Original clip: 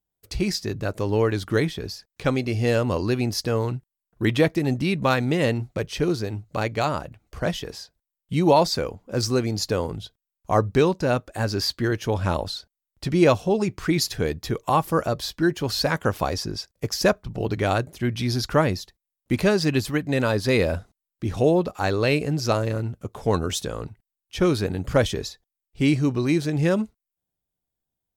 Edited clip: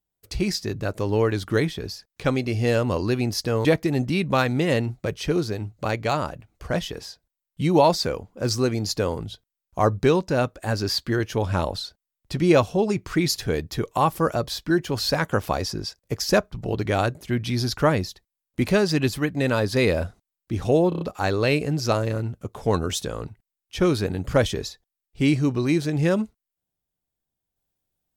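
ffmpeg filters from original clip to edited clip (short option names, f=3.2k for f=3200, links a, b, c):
-filter_complex "[0:a]asplit=6[a][b][c][d][e][f];[a]atrim=end=3.652[g];[b]atrim=start=4.368:end=21.642[h];[c]atrim=start=21.608:end=21.642[i];[d]atrim=start=21.608:end=21.642[j];[e]atrim=start=21.608:end=21.642[k];[f]atrim=start=21.608[l];[g][h]acrossfade=d=0.004:c1=hsin:c2=hsin[m];[m][i]acrossfade=d=0.004:c1=hsin:c2=hsin[n];[n][j]acrossfade=d=0.004:c1=hsin:c2=hsin[o];[o][k]acrossfade=d=0.004:c1=hsin:c2=hsin[p];[p][l]acrossfade=d=0.004:c1=hsin:c2=hsin"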